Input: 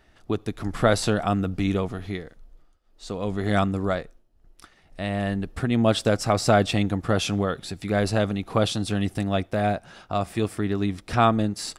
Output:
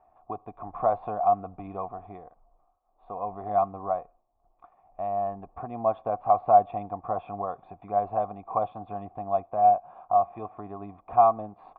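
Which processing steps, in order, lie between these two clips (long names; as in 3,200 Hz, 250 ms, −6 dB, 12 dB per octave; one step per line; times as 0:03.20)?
in parallel at −0.5 dB: downward compressor, threshold −29 dBFS, peak gain reduction 14.5 dB
on the sum: formant resonators in series a
level +7 dB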